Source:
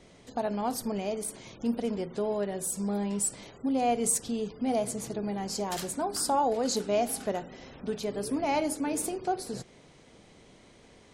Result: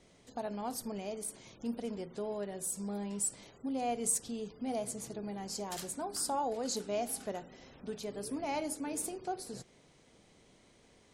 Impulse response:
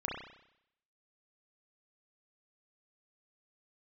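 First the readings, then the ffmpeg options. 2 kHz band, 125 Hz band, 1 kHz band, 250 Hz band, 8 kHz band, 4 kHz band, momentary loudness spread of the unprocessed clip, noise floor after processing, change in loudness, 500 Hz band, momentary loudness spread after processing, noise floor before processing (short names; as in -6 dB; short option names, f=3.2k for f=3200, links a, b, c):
-7.5 dB, -8.0 dB, -8.0 dB, -8.0 dB, -4.0 dB, -6.0 dB, 9 LU, -64 dBFS, -7.0 dB, -8.0 dB, 9 LU, -56 dBFS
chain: -af "equalizer=f=9k:w=0.55:g=4,volume=-8dB"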